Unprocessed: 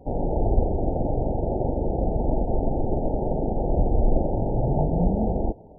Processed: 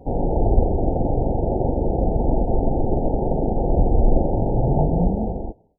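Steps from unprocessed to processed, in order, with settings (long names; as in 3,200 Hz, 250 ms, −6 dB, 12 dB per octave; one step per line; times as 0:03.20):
fade-out on the ending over 0.89 s
notch filter 610 Hz, Q 20
level +4 dB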